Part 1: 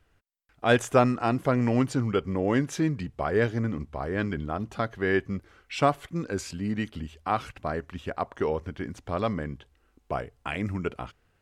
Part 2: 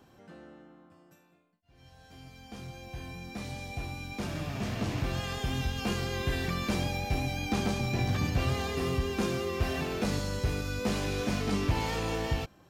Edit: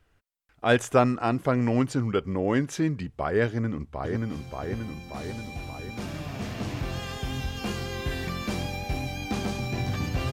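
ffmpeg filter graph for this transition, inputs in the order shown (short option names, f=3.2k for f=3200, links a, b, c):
-filter_complex "[0:a]apad=whole_dur=10.32,atrim=end=10.32,atrim=end=4.162[a];[1:a]atrim=start=2.368:end=8.53[b];[a][b]acrossfade=d=0.004:c1=hsin:c2=hsin,asplit=2[c][d];[d]afade=t=in:st=3.46:d=0.01,afade=t=out:st=4.16:d=0.01,aecho=0:1:580|1160|1740|2320|2900|3480|4060|4640|5220:0.794328|0.476597|0.285958|0.171575|0.102945|0.061767|0.0370602|0.0222361|0.0133417[e];[c][e]amix=inputs=2:normalize=0"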